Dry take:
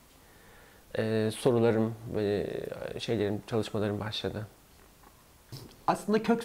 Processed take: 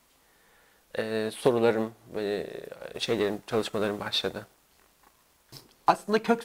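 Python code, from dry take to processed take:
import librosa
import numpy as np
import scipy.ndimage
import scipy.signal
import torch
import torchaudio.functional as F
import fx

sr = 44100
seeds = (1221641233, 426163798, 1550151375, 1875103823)

y = fx.peak_eq(x, sr, hz=100.0, db=-9.5, octaves=0.37)
y = fx.leveller(y, sr, passes=1, at=(2.94, 5.61))
y = fx.low_shelf(y, sr, hz=420.0, db=-8.0)
y = fx.upward_expand(y, sr, threshold_db=-47.0, expansion=1.5)
y = F.gain(torch.from_numpy(y), 8.0).numpy()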